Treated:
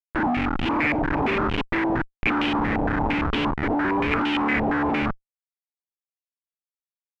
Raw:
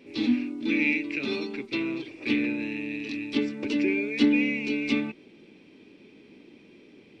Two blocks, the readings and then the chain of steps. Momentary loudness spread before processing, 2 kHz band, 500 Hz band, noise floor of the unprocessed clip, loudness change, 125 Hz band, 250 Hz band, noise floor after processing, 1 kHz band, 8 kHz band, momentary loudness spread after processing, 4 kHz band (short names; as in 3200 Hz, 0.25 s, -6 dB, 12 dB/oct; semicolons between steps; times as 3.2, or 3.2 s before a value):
9 LU, +4.5 dB, +5.0 dB, -54 dBFS, +4.0 dB, +13.5 dB, +1.5 dB, under -85 dBFS, +23.0 dB, n/a, 3 LU, +3.5 dB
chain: Schmitt trigger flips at -31 dBFS; stepped low-pass 8.7 Hz 730–2900 Hz; gain +4.5 dB